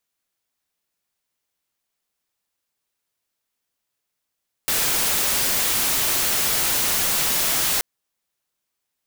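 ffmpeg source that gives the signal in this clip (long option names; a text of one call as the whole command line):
ffmpeg -f lavfi -i "anoisesrc=color=white:amplitude=0.154:duration=3.13:sample_rate=44100:seed=1" out.wav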